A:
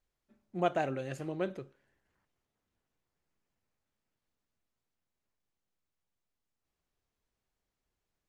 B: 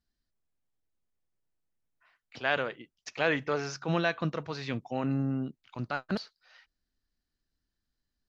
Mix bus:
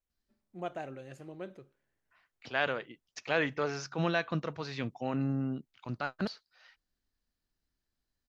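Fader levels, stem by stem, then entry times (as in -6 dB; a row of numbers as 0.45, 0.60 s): -8.5, -2.0 dB; 0.00, 0.10 s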